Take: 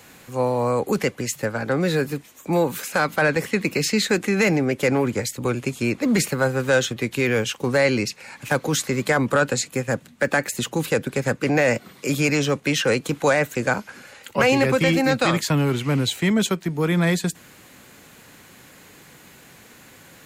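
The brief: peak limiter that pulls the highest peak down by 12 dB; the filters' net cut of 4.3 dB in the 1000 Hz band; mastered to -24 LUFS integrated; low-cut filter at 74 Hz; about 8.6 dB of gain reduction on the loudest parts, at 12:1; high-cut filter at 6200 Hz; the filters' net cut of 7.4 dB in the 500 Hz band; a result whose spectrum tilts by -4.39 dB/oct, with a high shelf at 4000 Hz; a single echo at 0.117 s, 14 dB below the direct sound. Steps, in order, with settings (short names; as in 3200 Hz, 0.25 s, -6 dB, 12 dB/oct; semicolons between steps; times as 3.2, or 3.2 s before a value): HPF 74 Hz; LPF 6200 Hz; bell 500 Hz -8 dB; bell 1000 Hz -3.5 dB; high shelf 4000 Hz +3.5 dB; compressor 12:1, threshold -26 dBFS; limiter -24 dBFS; echo 0.117 s -14 dB; gain +9.5 dB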